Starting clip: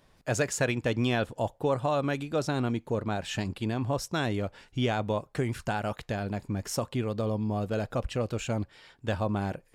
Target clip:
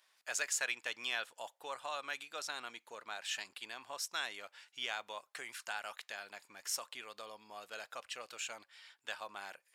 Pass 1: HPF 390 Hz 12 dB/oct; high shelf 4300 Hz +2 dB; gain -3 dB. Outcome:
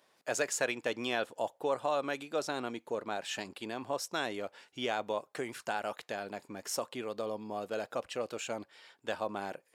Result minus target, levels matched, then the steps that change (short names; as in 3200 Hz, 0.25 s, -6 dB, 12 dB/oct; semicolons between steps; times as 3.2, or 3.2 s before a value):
500 Hz band +10.0 dB
change: HPF 1400 Hz 12 dB/oct